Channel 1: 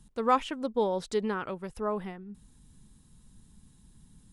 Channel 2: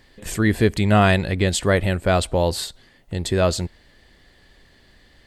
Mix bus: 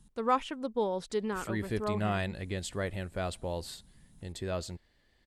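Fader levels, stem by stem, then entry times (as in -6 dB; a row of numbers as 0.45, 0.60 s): -3.0, -16.0 dB; 0.00, 1.10 s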